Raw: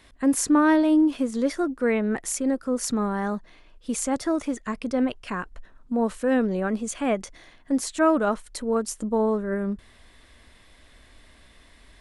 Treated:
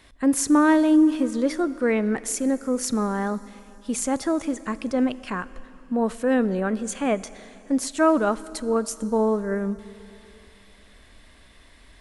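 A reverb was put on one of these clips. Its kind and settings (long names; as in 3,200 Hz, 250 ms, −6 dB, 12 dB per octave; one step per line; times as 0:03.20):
dense smooth reverb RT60 3.2 s, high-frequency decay 1×, DRR 16.5 dB
level +1 dB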